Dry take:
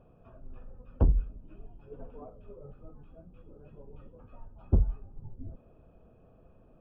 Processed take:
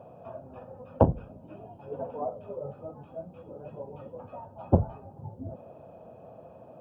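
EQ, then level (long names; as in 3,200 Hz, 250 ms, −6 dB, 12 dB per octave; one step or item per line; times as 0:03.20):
high-pass filter 97 Hz 24 dB per octave
flat-topped bell 710 Hz +10 dB 1.1 octaves
+7.5 dB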